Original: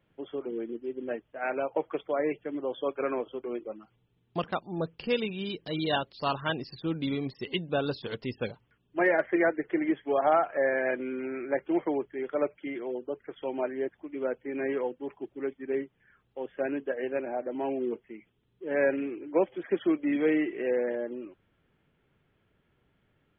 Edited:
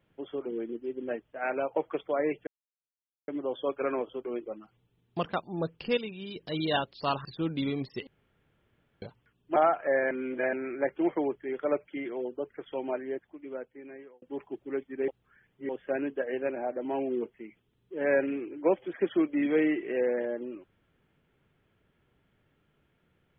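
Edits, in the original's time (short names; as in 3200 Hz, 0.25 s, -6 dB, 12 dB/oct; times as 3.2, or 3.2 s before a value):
2.47 insert silence 0.81 s
5.16–5.55 gain -6 dB
6.44–6.7 cut
7.52–8.47 room tone
9.01–10.26 cut
10.81–11.23 reverse
13.35–14.92 fade out
15.78–16.39 reverse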